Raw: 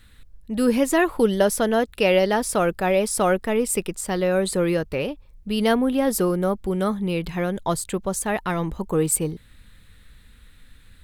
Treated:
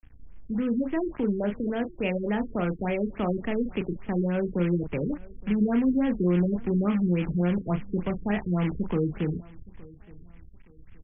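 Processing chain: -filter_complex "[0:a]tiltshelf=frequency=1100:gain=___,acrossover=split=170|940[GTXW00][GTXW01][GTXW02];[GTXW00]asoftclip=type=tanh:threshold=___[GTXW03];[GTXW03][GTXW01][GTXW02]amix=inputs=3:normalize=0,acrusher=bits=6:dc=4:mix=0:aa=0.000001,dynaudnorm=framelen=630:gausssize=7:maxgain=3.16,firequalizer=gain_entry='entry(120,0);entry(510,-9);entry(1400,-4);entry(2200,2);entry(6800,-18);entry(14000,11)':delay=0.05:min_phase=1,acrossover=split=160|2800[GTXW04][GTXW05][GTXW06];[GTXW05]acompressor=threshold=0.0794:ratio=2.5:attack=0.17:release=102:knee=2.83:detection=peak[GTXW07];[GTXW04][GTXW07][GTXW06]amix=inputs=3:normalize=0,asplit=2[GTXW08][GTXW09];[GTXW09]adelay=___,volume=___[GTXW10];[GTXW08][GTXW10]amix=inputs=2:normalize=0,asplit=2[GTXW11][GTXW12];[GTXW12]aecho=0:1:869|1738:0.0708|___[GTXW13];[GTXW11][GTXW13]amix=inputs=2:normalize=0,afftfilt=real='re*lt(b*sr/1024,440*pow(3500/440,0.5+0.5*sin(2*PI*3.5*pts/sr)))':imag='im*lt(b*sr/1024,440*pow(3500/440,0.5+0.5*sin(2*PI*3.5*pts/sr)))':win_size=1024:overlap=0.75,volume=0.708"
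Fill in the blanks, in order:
6, 0.0178, 34, 0.447, 0.0234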